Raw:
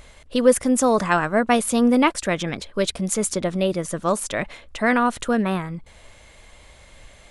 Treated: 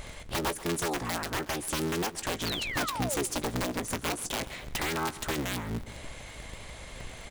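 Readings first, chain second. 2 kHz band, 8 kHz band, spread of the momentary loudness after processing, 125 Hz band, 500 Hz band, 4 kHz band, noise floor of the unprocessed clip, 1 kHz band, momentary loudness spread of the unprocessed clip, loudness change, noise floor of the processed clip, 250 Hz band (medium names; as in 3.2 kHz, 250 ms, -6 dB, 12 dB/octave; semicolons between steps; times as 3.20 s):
-8.0 dB, -7.0 dB, 13 LU, -6.0 dB, -14.0 dB, -2.5 dB, -49 dBFS, -10.5 dB, 10 LU, -10.5 dB, -45 dBFS, -14.0 dB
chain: cycle switcher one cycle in 3, inverted; compression 12:1, threshold -32 dBFS, peak gain reduction 23 dB; integer overflow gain 27.5 dB; painted sound fall, 2.45–3.26 s, 360–4800 Hz -40 dBFS; doubling 17 ms -13 dB; feedback delay 133 ms, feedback 47%, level -17.5 dB; trim +4 dB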